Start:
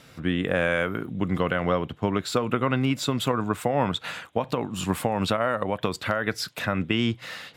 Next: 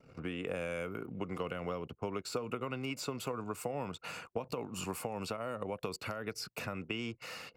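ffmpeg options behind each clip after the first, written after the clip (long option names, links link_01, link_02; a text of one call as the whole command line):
ffmpeg -i in.wav -filter_complex "[0:a]acrossover=split=380|3300[link_01][link_02][link_03];[link_01]acompressor=threshold=-39dB:ratio=4[link_04];[link_02]acompressor=threshold=-36dB:ratio=4[link_05];[link_03]acompressor=threshold=-38dB:ratio=4[link_06];[link_04][link_05][link_06]amix=inputs=3:normalize=0,superequalizer=7b=1.58:11b=0.447:13b=0.316,anlmdn=0.00631,volume=-4dB" out.wav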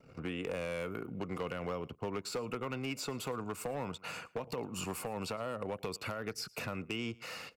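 ffmpeg -i in.wav -af "aecho=1:1:111:0.0668,asoftclip=type=hard:threshold=-31.5dB,volume=1dB" out.wav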